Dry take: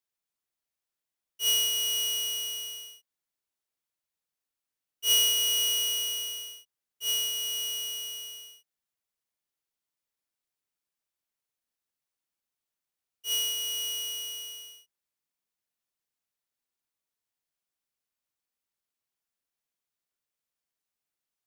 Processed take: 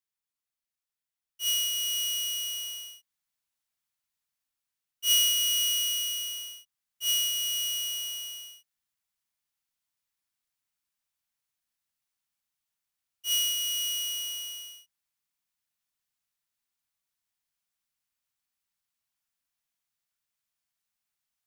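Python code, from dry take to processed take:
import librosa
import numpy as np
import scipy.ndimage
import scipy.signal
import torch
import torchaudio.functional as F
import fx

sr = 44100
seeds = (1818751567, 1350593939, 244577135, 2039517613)

y = fx.dynamic_eq(x, sr, hz=720.0, q=0.76, threshold_db=-45.0, ratio=4.0, max_db=-4)
y = fx.rider(y, sr, range_db=3, speed_s=2.0)
y = fx.peak_eq(y, sr, hz=420.0, db=-12.5, octaves=1.1)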